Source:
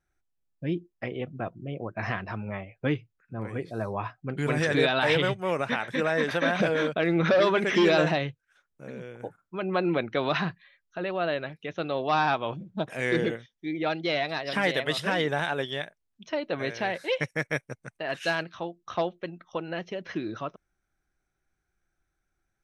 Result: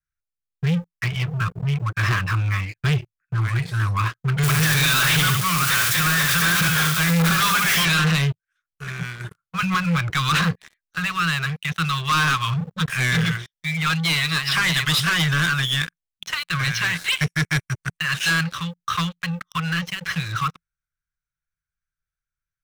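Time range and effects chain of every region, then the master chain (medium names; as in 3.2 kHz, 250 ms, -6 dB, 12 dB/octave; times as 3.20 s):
4.43–7.85 s: zero-crossing glitches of -23 dBFS + high-pass 60 Hz + delay 71 ms -8 dB
9.62–10.10 s: distance through air 260 m + three bands compressed up and down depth 100%
whole clip: Chebyshev band-stop 170–1100 Hz, order 5; dynamic bell 1.9 kHz, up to -6 dB, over -46 dBFS, Q 2.8; waveshaping leveller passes 5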